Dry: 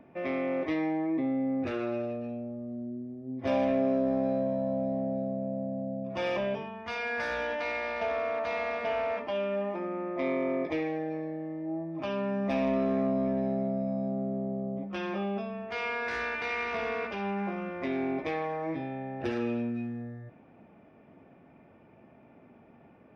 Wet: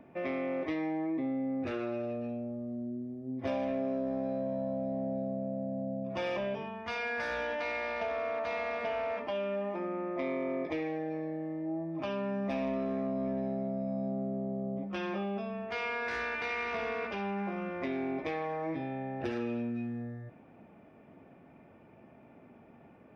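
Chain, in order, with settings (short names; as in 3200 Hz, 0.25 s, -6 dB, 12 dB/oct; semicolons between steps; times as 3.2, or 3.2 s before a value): compressor 2.5:1, threshold -32 dBFS, peak gain reduction 6.5 dB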